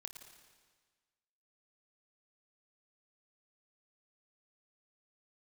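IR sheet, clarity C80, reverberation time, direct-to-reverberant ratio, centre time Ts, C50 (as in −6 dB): 8.0 dB, 1.5 s, 6.0 dB, 31 ms, 6.5 dB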